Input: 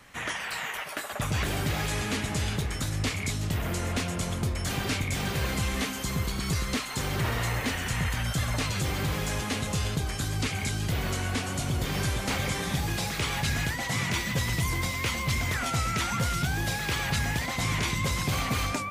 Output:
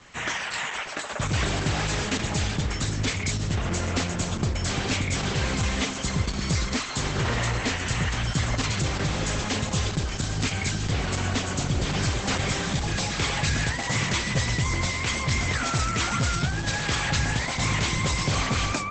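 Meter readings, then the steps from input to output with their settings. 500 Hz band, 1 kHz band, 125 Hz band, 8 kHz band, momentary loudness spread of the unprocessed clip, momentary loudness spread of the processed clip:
+3.0 dB, +3.0 dB, +3.0 dB, +4.0 dB, 3 LU, 3 LU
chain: high-shelf EQ 8,000 Hz +3.5 dB
level +3.5 dB
Opus 10 kbit/s 48,000 Hz

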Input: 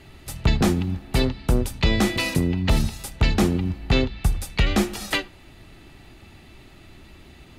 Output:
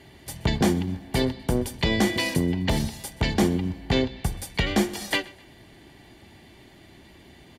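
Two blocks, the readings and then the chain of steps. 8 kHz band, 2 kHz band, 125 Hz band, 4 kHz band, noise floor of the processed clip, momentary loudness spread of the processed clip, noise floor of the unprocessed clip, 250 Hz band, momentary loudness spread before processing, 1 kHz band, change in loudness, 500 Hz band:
−1.0 dB, −1.0 dB, −4.0 dB, −1.0 dB, −51 dBFS, 7 LU, −48 dBFS, −1.0 dB, 6 LU, −1.0 dB, −2.5 dB, 0.0 dB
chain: notch comb filter 1,300 Hz
repeating echo 127 ms, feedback 37%, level −22 dB

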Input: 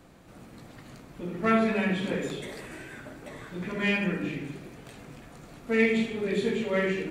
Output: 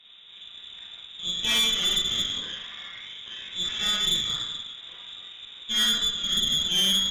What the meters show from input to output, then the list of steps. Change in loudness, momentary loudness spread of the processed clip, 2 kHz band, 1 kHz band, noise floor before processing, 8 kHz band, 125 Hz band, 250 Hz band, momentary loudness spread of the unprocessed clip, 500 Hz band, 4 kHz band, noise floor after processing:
+4.5 dB, 19 LU, −3.5 dB, −6.0 dB, −50 dBFS, +19.0 dB, −8.5 dB, −12.5 dB, 22 LU, −17.5 dB, +21.5 dB, −47 dBFS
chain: treble cut that deepens with the level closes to 1,600 Hz, closed at −25 dBFS
low-shelf EQ 270 Hz +5 dB
voice inversion scrambler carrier 3,700 Hz
four-comb reverb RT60 0.34 s, combs from 32 ms, DRR −3 dB
tube saturation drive 18 dB, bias 0.7

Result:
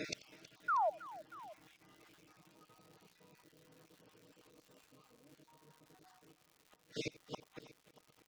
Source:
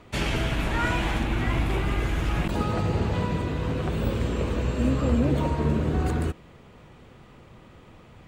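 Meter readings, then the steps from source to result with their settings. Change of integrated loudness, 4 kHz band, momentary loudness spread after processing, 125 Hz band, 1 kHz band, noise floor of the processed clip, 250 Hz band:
−15.0 dB, −17.5 dB, 23 LU, −36.5 dB, −10.0 dB, −73 dBFS, −29.5 dB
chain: time-frequency cells dropped at random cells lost 37%
high-pass filter 220 Hz 12 dB per octave
comb filter 6.5 ms, depth 70%
reversed playback
downward compressor, threshold −37 dBFS, peak gain reduction 16.5 dB
reversed playback
gate with flip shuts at −44 dBFS, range −41 dB
low-pass with resonance 5,600 Hz, resonance Q 3.5
sound drawn into the spectrogram fall, 0:00.68–0:00.90, 580–1,500 Hz −47 dBFS
on a send: multi-tap delay 87/321/635 ms −20/−17.5/−19.5 dB
on the sum: surface crackle 210 per second −67 dBFS
level +15 dB

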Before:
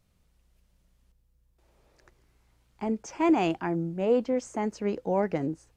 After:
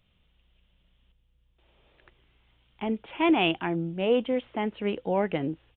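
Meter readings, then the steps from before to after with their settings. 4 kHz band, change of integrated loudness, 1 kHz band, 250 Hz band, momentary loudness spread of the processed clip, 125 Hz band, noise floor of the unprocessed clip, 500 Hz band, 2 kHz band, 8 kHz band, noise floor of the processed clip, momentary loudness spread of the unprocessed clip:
+11.0 dB, +0.5 dB, +0.5 dB, 0.0 dB, 9 LU, 0.0 dB, −68 dBFS, 0.0 dB, +6.5 dB, below −30 dB, −68 dBFS, 8 LU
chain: parametric band 3,100 Hz +13 dB 0.82 octaves
downsampling to 8,000 Hz

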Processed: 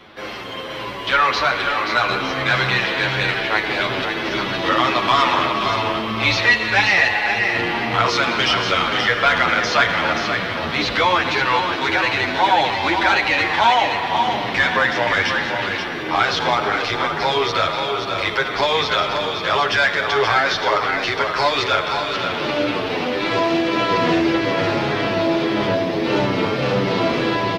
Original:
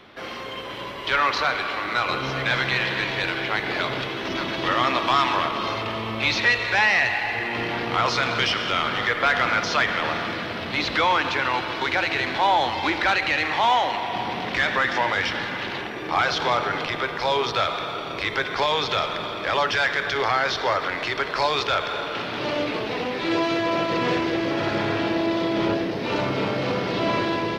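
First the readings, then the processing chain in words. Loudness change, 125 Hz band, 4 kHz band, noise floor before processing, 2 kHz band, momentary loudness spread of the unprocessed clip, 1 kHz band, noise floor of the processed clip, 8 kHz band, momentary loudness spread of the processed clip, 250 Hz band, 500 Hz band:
+5.0 dB, +5.0 dB, +5.0 dB, −32 dBFS, +5.0 dB, 7 LU, +4.5 dB, −26 dBFS, +5.0 dB, 6 LU, +4.5 dB, +5.0 dB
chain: single-tap delay 529 ms −6.5 dB
barber-pole flanger 8.8 ms −1.7 Hz
level +7 dB

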